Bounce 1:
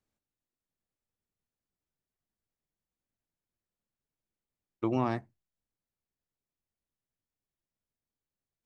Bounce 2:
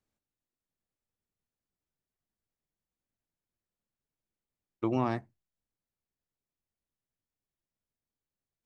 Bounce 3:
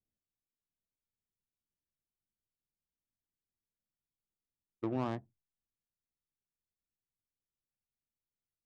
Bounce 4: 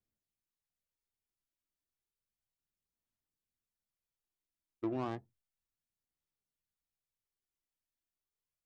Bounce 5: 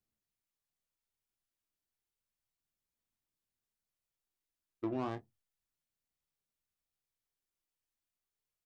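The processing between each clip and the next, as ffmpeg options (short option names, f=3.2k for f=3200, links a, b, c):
-af anull
-af "adynamicsmooth=sensitivity=2.5:basefreq=590,volume=-5.5dB"
-af "aphaser=in_gain=1:out_gain=1:delay=3.1:decay=0.37:speed=0.32:type=sinusoidal,volume=-2.5dB"
-filter_complex "[0:a]asplit=2[a][b];[b]adelay=28,volume=-12dB[c];[a][c]amix=inputs=2:normalize=0"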